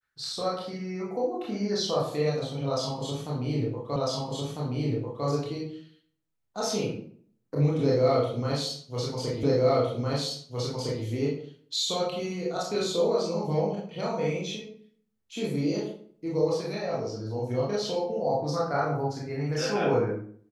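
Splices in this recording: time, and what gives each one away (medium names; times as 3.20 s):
3.96 s: repeat of the last 1.3 s
9.43 s: repeat of the last 1.61 s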